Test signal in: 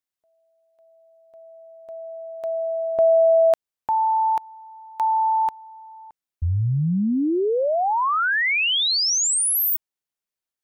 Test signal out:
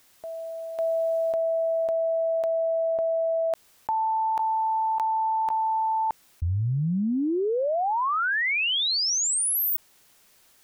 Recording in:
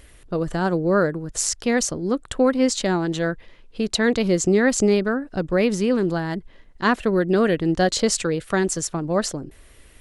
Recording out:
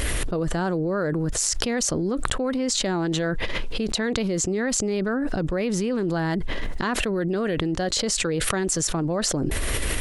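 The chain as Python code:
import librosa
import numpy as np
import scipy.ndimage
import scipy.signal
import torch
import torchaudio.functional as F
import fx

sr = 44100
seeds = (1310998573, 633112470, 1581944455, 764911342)

y = fx.env_flatten(x, sr, amount_pct=100)
y = y * 10.0 ** (-9.5 / 20.0)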